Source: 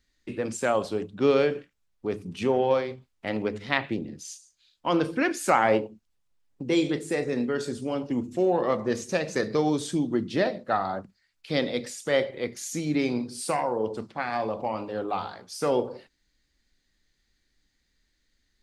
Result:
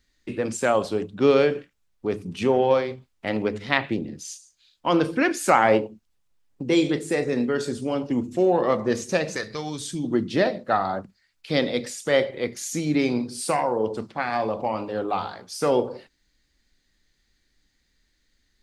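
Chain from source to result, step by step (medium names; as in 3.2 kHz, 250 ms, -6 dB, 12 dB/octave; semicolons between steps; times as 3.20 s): 9.35–10.03 s: peaking EQ 240 Hz -> 720 Hz -13.5 dB 2.9 oct; trim +3.5 dB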